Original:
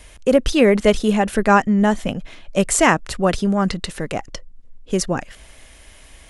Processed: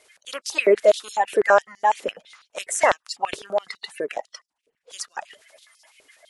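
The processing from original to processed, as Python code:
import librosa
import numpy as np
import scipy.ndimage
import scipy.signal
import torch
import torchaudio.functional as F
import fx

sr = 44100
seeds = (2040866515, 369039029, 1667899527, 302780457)

y = fx.spec_quant(x, sr, step_db=30)
y = fx.filter_held_highpass(y, sr, hz=12.0, low_hz=420.0, high_hz=5100.0)
y = y * 10.0 ** (-7.0 / 20.0)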